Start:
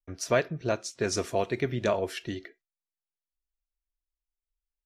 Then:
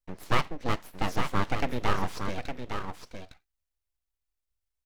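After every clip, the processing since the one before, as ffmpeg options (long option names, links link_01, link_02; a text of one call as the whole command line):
ffmpeg -i in.wav -filter_complex "[0:a]acrossover=split=3100[link_01][link_02];[link_02]acompressor=threshold=-49dB:ratio=4:attack=1:release=60[link_03];[link_01][link_03]amix=inputs=2:normalize=0,aeval=exprs='abs(val(0))':channel_layout=same,aecho=1:1:860:0.447,volume=2.5dB" out.wav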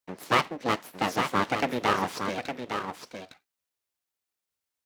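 ffmpeg -i in.wav -af "highpass=200,volume=4.5dB" out.wav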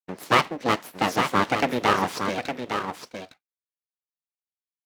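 ffmpeg -i in.wav -af "agate=range=-33dB:threshold=-42dB:ratio=3:detection=peak,volume=4dB" out.wav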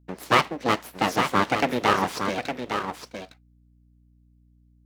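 ffmpeg -i in.wav -af "aeval=exprs='val(0)+0.00141*(sin(2*PI*60*n/s)+sin(2*PI*2*60*n/s)/2+sin(2*PI*3*60*n/s)/3+sin(2*PI*4*60*n/s)/4+sin(2*PI*5*60*n/s)/5)':channel_layout=same" out.wav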